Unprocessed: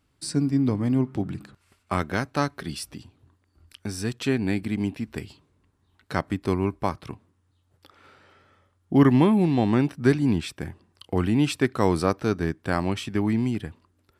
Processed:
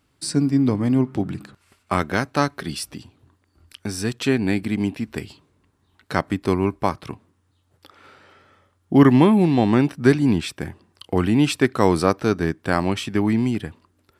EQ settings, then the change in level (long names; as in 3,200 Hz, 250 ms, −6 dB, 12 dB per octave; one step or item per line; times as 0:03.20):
low-shelf EQ 96 Hz −6.5 dB
+5.0 dB